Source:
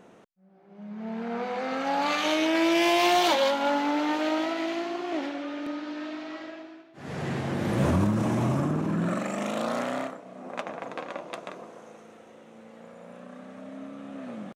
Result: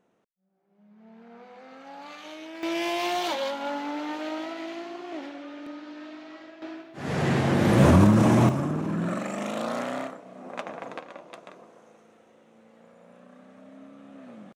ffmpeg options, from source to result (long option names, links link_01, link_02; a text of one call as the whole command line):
ffmpeg -i in.wav -af "asetnsamples=nb_out_samples=441:pad=0,asendcmd='2.63 volume volume -6dB;6.62 volume volume 7dB;8.49 volume volume -1dB;10.99 volume volume -7dB',volume=-16.5dB" out.wav